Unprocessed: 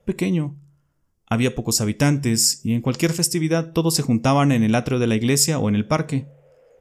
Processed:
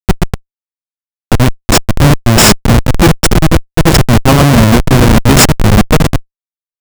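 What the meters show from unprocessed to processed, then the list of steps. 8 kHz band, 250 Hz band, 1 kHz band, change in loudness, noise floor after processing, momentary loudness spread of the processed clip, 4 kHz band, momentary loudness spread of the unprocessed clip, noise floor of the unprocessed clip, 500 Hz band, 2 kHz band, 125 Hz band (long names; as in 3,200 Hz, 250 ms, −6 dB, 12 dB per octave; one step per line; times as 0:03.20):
+8.0 dB, +10.0 dB, +13.5 dB, +11.5 dB, below −85 dBFS, 9 LU, +11.5 dB, 5 LU, −66 dBFS, +10.5 dB, +14.5 dB, +13.0 dB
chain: parametric band 580 Hz −14.5 dB 0.2 octaves
on a send: repeating echo 630 ms, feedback 20%, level −8.5 dB
on the sum: harmonic generator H 2 −32 dB, 3 −44 dB, 8 −31 dB, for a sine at −3.5 dBFS
comparator with hysteresis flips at −16.5 dBFS
boost into a limiter +21 dB
level −1 dB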